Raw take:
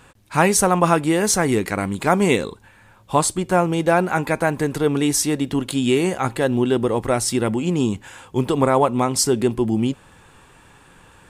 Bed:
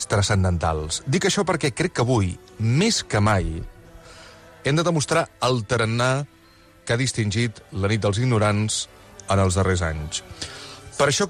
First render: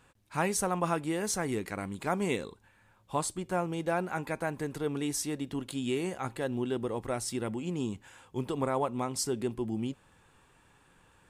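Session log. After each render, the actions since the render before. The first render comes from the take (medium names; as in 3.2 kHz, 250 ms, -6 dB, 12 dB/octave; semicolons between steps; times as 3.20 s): trim -13.5 dB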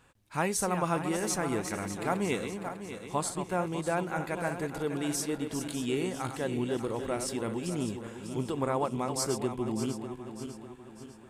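backward echo that repeats 299 ms, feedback 66%, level -8 dB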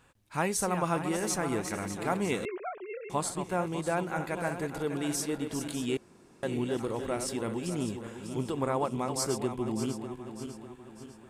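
2.45–3.10 s: formants replaced by sine waves; 5.97–6.43 s: room tone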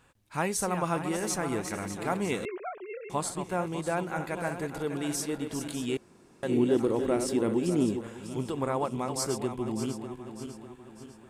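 6.49–8.01 s: peaking EQ 320 Hz +9 dB 1.5 oct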